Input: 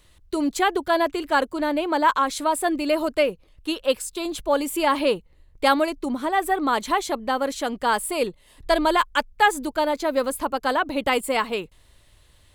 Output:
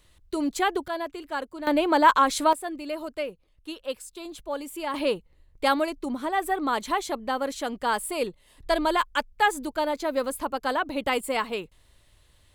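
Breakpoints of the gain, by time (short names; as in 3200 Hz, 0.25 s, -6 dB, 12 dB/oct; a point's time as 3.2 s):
-3.5 dB
from 0.88 s -10.5 dB
from 1.67 s +1.5 dB
from 2.53 s -10.5 dB
from 4.94 s -4 dB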